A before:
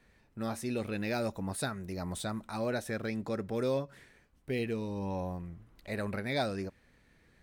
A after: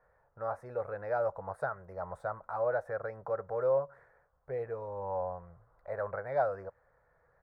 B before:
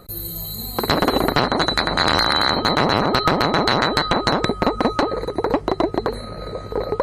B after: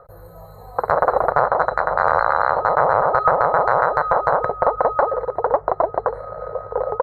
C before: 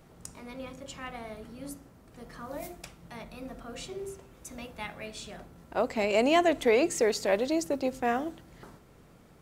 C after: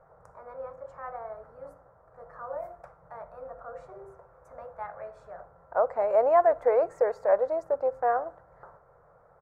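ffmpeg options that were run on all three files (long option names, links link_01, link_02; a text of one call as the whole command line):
ffmpeg -i in.wav -af "firequalizer=gain_entry='entry(150,0);entry(220,-16);entry(340,-8);entry(500,13);entry(1400,11);entry(2900,-26);entry(4500,-20)':delay=0.05:min_phase=1,volume=-8dB" out.wav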